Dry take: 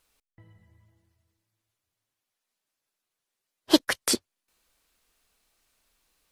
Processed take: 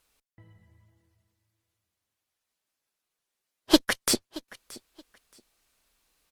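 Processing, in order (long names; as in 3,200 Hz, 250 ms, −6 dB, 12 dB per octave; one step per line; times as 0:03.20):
harmonic generator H 8 −24 dB, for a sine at −3 dBFS
repeating echo 625 ms, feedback 22%, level −20.5 dB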